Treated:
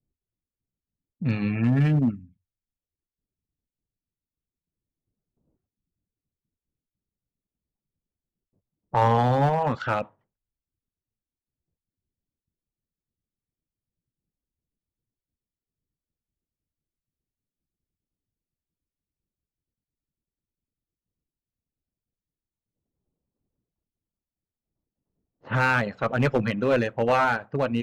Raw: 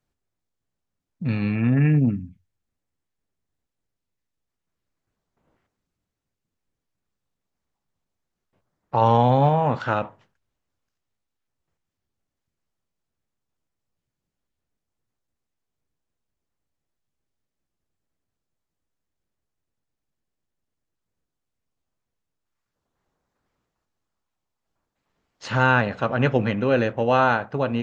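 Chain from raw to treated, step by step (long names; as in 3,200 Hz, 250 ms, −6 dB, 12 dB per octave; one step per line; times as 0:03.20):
reverb reduction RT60 0.69 s
asymmetric clip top −17 dBFS
low-pass that shuts in the quiet parts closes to 340 Hz, open at −22.5 dBFS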